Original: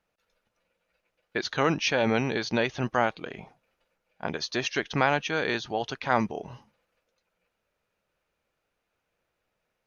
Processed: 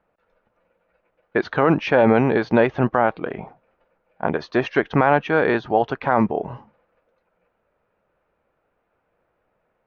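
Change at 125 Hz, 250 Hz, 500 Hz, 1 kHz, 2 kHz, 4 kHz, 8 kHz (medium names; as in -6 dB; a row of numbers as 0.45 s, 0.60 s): +8.0 dB, +9.5 dB, +10.0 dB, +8.0 dB, +4.5 dB, -5.0 dB, no reading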